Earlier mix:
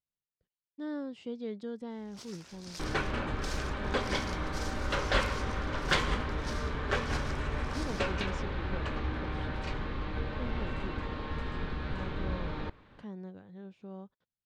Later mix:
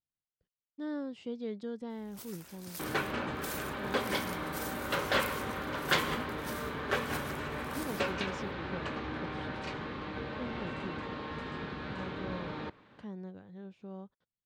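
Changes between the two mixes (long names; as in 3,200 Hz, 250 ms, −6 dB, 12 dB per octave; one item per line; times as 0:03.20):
first sound: remove low-pass with resonance 5,400 Hz, resonance Q 1.9
second sound: add high-pass filter 140 Hz 12 dB per octave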